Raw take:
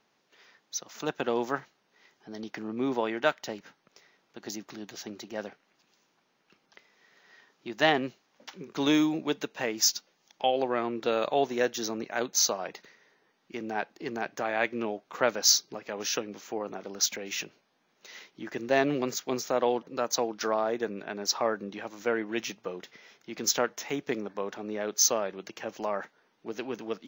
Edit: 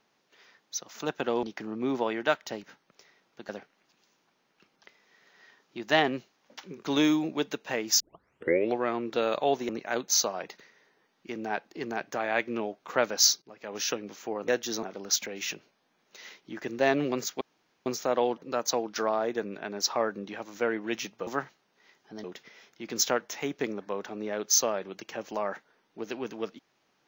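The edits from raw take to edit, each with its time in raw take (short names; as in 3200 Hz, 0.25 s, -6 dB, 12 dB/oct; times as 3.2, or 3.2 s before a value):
1.43–2.4 move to 22.72
4.46–5.39 cut
9.9 tape start 0.79 s
11.59–11.94 move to 16.73
15.67–16.07 fade in linear, from -19.5 dB
19.31 insert room tone 0.45 s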